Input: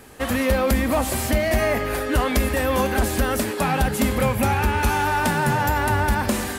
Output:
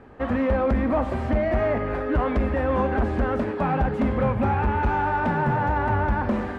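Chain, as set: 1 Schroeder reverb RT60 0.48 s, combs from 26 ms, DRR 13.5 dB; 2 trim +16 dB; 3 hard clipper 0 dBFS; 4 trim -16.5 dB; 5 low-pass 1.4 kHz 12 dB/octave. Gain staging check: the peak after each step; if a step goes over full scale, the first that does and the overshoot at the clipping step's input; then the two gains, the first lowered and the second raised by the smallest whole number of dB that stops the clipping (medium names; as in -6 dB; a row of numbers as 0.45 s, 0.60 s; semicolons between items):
-10.0 dBFS, +6.0 dBFS, 0.0 dBFS, -16.5 dBFS, -16.0 dBFS; step 2, 6.0 dB; step 2 +10 dB, step 4 -10.5 dB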